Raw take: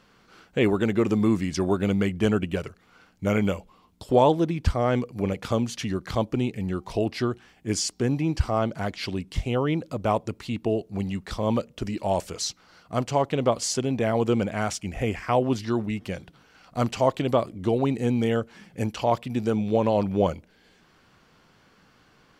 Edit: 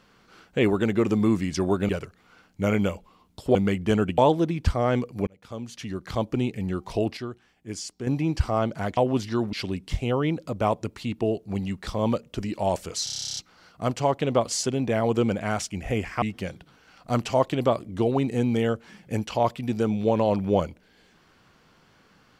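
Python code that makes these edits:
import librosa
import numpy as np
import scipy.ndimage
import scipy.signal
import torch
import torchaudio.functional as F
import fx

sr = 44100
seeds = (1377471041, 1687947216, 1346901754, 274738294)

y = fx.edit(x, sr, fx.move(start_s=1.89, length_s=0.63, to_s=4.18),
    fx.fade_in_span(start_s=5.27, length_s=1.1),
    fx.clip_gain(start_s=7.17, length_s=0.9, db=-8.5),
    fx.stutter(start_s=12.48, slice_s=0.03, count=12),
    fx.move(start_s=15.33, length_s=0.56, to_s=8.97), tone=tone)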